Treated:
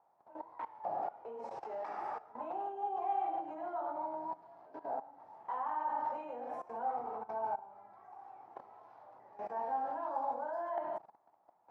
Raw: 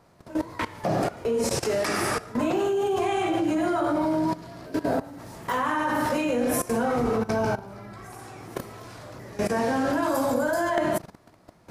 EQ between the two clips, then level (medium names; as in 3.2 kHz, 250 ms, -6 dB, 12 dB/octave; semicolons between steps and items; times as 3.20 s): band-pass filter 830 Hz, Q 7.4; distance through air 65 m; -1.5 dB